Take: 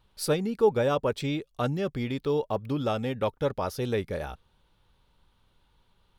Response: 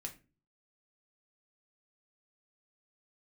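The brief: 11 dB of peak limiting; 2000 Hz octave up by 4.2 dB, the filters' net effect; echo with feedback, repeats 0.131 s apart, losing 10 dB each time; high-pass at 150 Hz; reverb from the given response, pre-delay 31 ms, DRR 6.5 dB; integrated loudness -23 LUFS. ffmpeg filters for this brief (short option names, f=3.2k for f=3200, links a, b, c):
-filter_complex "[0:a]highpass=150,equalizer=f=2k:t=o:g=5.5,alimiter=limit=-23dB:level=0:latency=1,aecho=1:1:131|262|393|524:0.316|0.101|0.0324|0.0104,asplit=2[a][b];[1:a]atrim=start_sample=2205,adelay=31[c];[b][c]afir=irnorm=-1:irlink=0,volume=-3.5dB[d];[a][d]amix=inputs=2:normalize=0,volume=9dB"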